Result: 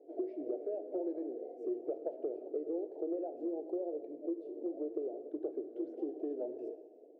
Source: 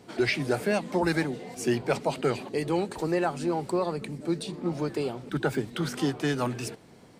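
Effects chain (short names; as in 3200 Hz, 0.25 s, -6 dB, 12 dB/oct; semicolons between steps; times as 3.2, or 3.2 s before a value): elliptic band-pass 310–660 Hz, stop band 40 dB; compressor, threshold -33 dBFS, peak gain reduction 11 dB; non-linear reverb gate 0.49 s falling, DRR 8.5 dB; gain -1.5 dB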